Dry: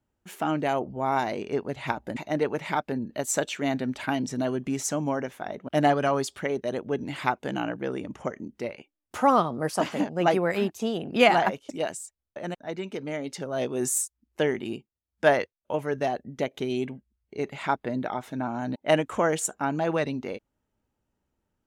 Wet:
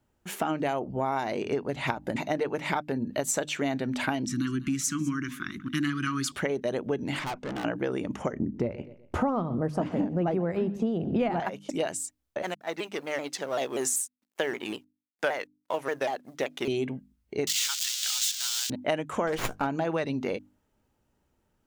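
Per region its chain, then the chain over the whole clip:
4.25–6.32 s: elliptic band-stop 320–1200 Hz + delay 197 ms -21 dB
7.19–7.65 s: low-pass 5.9 kHz + peaking EQ 4.2 kHz -3.5 dB 0.85 oct + valve stage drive 37 dB, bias 0.4
8.33–11.40 s: tilt EQ -4.5 dB/octave + feedback delay 125 ms, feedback 34%, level -20.5 dB
12.42–16.68 s: companding laws mixed up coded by A + high-pass 660 Hz 6 dB/octave + vibrato with a chosen wave saw down 5.2 Hz, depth 160 cents
17.47–18.70 s: zero-crossing glitches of -19.5 dBFS + high-pass 1.5 kHz 24 dB/octave + high-order bell 4.7 kHz +13 dB
19.27–19.67 s: treble shelf 5.9 kHz +5 dB + doubling 15 ms -10 dB + sliding maximum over 5 samples
whole clip: hum notches 50/100/150/200/250/300 Hz; compression 6:1, threshold -32 dBFS; trim +6.5 dB

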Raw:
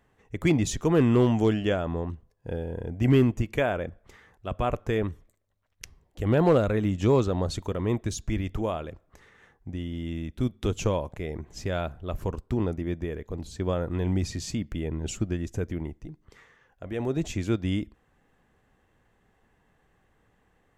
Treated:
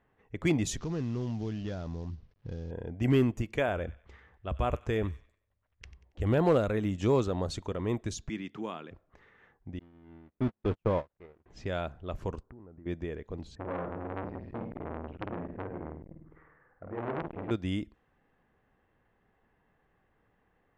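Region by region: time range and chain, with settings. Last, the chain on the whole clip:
0.78–2.71 s: CVSD coder 32 kbps + tone controls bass +11 dB, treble +5 dB + compression 2.5:1, threshold -32 dBFS
3.68–6.39 s: peaking EQ 66 Hz +14.5 dB 0.65 oct + feedback echo behind a high-pass 93 ms, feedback 37%, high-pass 1.5 kHz, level -15.5 dB
8.29–8.91 s: high-pass 170 Hz 24 dB/octave + peaking EQ 590 Hz -10.5 dB 0.76 oct
9.79–11.46 s: jump at every zero crossing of -26.5 dBFS + low-pass 2 kHz + gate -25 dBFS, range -51 dB
12.43–12.86 s: compression 20:1, threshold -40 dBFS + low-pass 1.7 kHz 24 dB/octave
13.55–17.51 s: low-pass 1.7 kHz 24 dB/octave + flutter echo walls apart 8.8 m, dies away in 0.8 s + transformer saturation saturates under 1.4 kHz
whole clip: level-controlled noise filter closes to 2.6 kHz, open at -21.5 dBFS; bass shelf 160 Hz -3.5 dB; trim -3.5 dB

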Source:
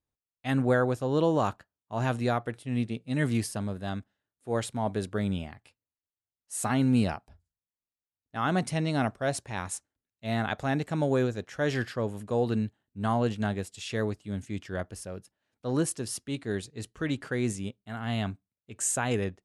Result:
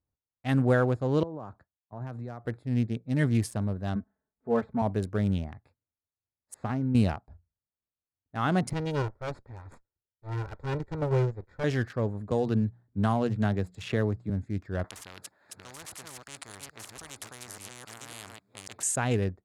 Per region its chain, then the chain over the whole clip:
1.23–2.45 s: compression 8:1, threshold -36 dBFS + three bands expanded up and down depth 100%
3.95–4.82 s: de-esser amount 80% + low-pass 1.7 kHz + comb 4.6 ms, depth 93%
6.54–6.95 s: compression, threshold -26 dBFS + distance through air 250 m
8.73–11.64 s: comb filter that takes the minimum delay 2.1 ms + low-pass 7.4 kHz + upward expansion, over -38 dBFS
12.31–14.30 s: hum notches 60/120/180 Hz + three bands compressed up and down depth 70%
14.84–18.83 s: chunks repeated in reverse 548 ms, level -4 dB + high-pass 1.3 kHz 6 dB/octave + spectrum-flattening compressor 10:1
whole clip: local Wiener filter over 15 samples; peaking EQ 82 Hz +6 dB 1.7 oct

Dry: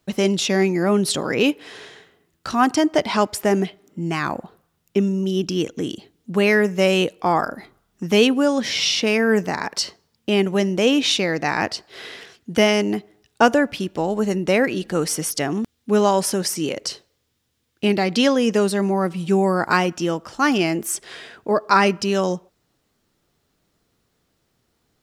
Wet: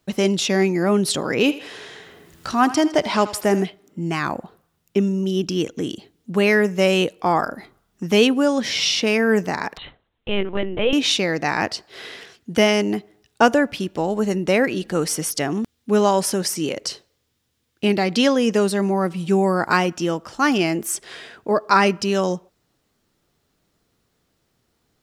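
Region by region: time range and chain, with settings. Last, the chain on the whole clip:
1.35–3.63 s: upward compressor, threshold -32 dBFS + thinning echo 80 ms, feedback 52%, high-pass 430 Hz, level -14.5 dB
9.77–10.93 s: bass shelf 240 Hz -9.5 dB + LPC vocoder at 8 kHz pitch kept
whole clip: none

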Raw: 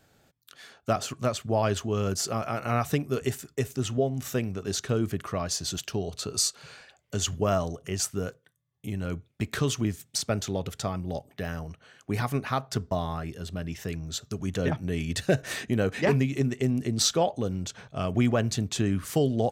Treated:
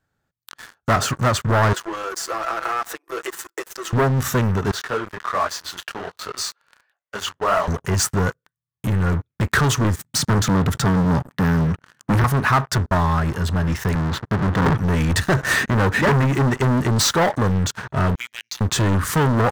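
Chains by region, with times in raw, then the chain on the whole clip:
1.73–3.93 s: comb 6 ms, depth 95% + compression 5:1, threshold -36 dBFS + Chebyshev high-pass 320 Hz, order 8
4.71–7.68 s: high-pass 99 Hz 6 dB/octave + three-band isolator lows -19 dB, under 460 Hz, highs -13 dB, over 4.2 kHz + detune thickener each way 46 cents
10.04–12.24 s: high-pass 100 Hz 24 dB/octave + resonant low shelf 310 Hz +7 dB, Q 1.5
13.95–14.75 s: square wave that keeps the level + high-pass 110 Hz + tape spacing loss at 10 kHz 27 dB
18.15–18.61 s: elliptic band-pass 2.2–6.5 kHz + compression 5:1, threshold -37 dBFS
whole clip: bass shelf 200 Hz +9 dB; waveshaping leveller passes 5; high-order bell 1.3 kHz +8 dB 1.3 oct; trim -7 dB

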